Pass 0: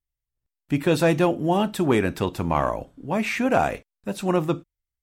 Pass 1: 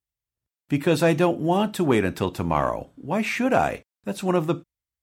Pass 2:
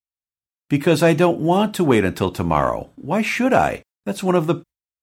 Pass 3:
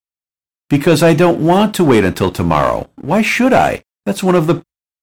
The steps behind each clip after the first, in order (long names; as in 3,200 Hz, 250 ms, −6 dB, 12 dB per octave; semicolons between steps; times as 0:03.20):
high-pass filter 63 Hz
noise gate with hold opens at −42 dBFS; level +4.5 dB
leveller curve on the samples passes 2